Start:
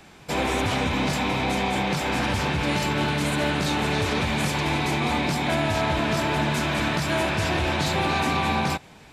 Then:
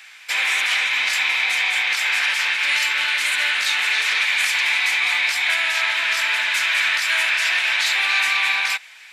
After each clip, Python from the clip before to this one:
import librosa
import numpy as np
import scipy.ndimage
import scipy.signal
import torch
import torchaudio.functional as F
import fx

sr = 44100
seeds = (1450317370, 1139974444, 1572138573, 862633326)

y = fx.highpass_res(x, sr, hz=2000.0, q=2.1)
y = y * 10.0 ** (6.0 / 20.0)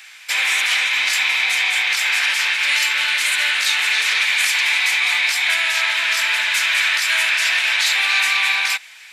y = fx.high_shelf(x, sr, hz=3700.0, db=6.0)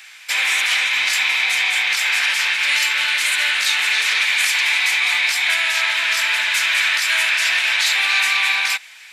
y = fx.peak_eq(x, sr, hz=190.0, db=4.0, octaves=0.25)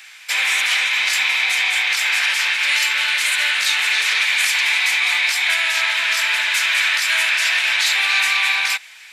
y = scipy.signal.sosfilt(scipy.signal.butter(2, 230.0, 'highpass', fs=sr, output='sos'), x)